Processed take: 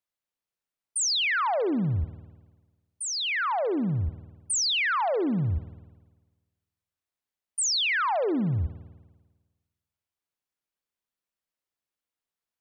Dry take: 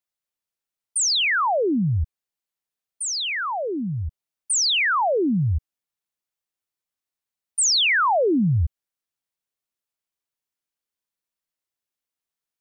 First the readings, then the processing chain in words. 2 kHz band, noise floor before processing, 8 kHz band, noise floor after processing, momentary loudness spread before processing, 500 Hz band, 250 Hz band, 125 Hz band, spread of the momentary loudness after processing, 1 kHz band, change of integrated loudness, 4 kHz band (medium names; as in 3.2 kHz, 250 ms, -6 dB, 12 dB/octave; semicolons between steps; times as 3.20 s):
-5.0 dB, under -85 dBFS, -5.5 dB, under -85 dBFS, 12 LU, -4.5 dB, -4.5 dB, -4.5 dB, 10 LU, -4.5 dB, -5.0 dB, -5.0 dB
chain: treble shelf 3.6 kHz -6 dB; peak limiter -22.5 dBFS, peak gain reduction 6.5 dB; spring tank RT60 1.3 s, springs 50 ms, chirp 30 ms, DRR 14 dB